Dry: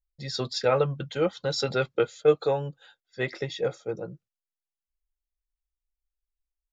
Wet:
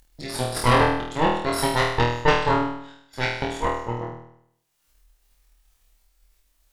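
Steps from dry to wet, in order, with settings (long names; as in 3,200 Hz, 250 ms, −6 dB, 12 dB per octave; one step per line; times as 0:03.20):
upward compression, threshold −29 dBFS
harmonic generator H 3 −14 dB, 6 −8 dB, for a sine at −8.5 dBFS
flutter between parallel walls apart 4.3 metres, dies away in 0.71 s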